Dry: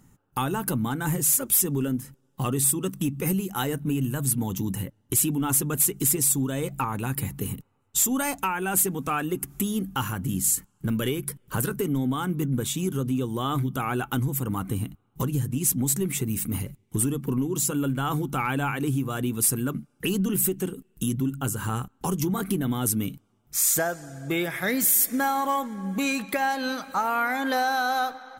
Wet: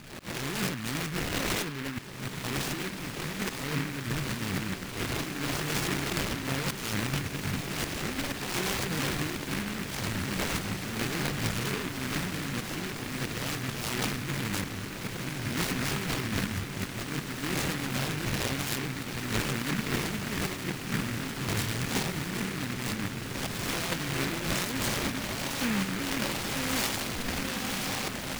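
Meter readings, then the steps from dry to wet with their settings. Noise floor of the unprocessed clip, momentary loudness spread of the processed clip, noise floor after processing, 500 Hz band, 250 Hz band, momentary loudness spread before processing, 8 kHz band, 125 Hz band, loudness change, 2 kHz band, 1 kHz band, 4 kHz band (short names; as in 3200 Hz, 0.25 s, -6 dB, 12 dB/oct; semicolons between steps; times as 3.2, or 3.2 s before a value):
-67 dBFS, 5 LU, -38 dBFS, -5.0 dB, -6.0 dB, 9 LU, -10.5 dB, -5.0 dB, -6.0 dB, 0.0 dB, -8.0 dB, +4.0 dB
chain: spectral swells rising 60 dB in 0.59 s; steep low-pass 9600 Hz 96 dB/oct; limiter -20.5 dBFS, peak gain reduction 11 dB; negative-ratio compressor -32 dBFS, ratio -0.5; auto swell 0.235 s; decimation with a swept rate 21×, swing 100% 1 Hz; on a send: diffused feedback echo 1.943 s, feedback 74%, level -7 dB; on the sum: noise-modulated delay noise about 1700 Hz, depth 0.33 ms; gain +1 dB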